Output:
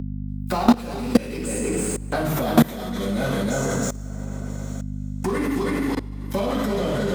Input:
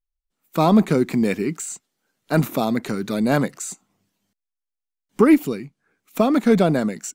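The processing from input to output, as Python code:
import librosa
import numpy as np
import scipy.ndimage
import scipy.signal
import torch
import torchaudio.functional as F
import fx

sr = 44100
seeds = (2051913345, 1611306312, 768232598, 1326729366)

p1 = fx.doppler_pass(x, sr, speed_mps=34, closest_m=20.0, pass_at_s=2.15)
p2 = p1 + fx.echo_single(p1, sr, ms=319, db=-4.5, dry=0)
p3 = fx.leveller(p2, sr, passes=3)
p4 = scipy.signal.sosfilt(scipy.signal.butter(2, 50.0, 'highpass', fs=sr, output='sos'), p3)
p5 = fx.peak_eq(p4, sr, hz=790.0, db=3.5, octaves=1.5)
p6 = fx.rev_double_slope(p5, sr, seeds[0], early_s=0.77, late_s=3.1, knee_db=-25, drr_db=-9.5)
p7 = fx.level_steps(p6, sr, step_db=24)
p8 = fx.add_hum(p7, sr, base_hz=50, snr_db=16)
p9 = fx.band_squash(p8, sr, depth_pct=70)
y = p9 * 10.0 ** (-1.0 / 20.0)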